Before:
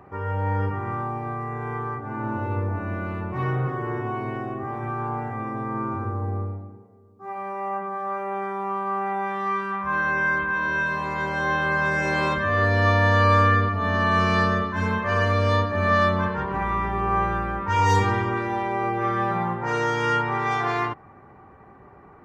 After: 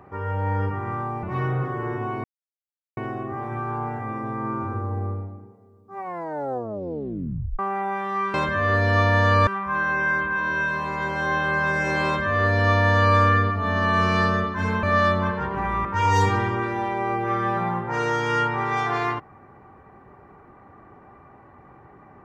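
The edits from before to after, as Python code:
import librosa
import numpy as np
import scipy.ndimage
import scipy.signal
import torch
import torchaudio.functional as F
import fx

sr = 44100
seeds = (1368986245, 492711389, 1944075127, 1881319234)

y = fx.edit(x, sr, fx.cut(start_s=1.23, length_s=2.04),
    fx.insert_silence(at_s=4.28, length_s=0.73),
    fx.tape_stop(start_s=7.28, length_s=1.62),
    fx.duplicate(start_s=12.23, length_s=1.13, to_s=9.65),
    fx.cut(start_s=15.01, length_s=0.79),
    fx.cut(start_s=16.82, length_s=0.77), tone=tone)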